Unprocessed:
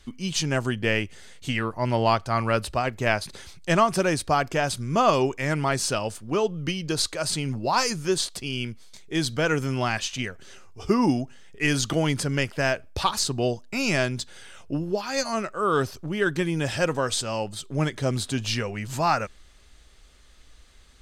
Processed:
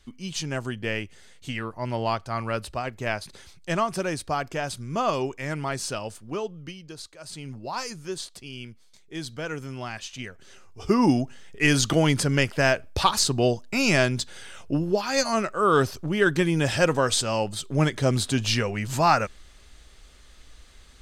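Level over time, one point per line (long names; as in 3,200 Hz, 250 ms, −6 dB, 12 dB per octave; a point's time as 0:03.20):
0:06.28 −5 dB
0:07.13 −17.5 dB
0:07.45 −9 dB
0:09.95 −9 dB
0:11.19 +3 dB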